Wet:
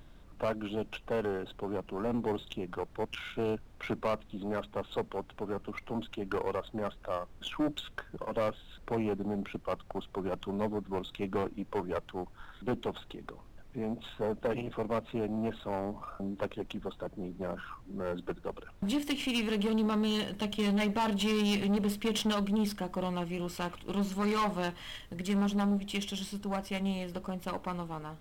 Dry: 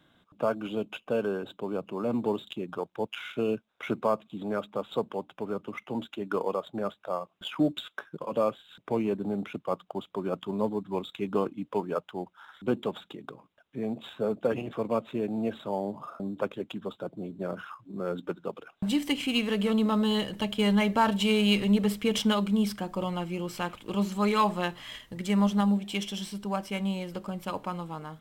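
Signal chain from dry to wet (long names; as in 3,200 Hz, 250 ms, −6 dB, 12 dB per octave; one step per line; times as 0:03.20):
tube saturation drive 25 dB, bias 0.5
background noise brown −52 dBFS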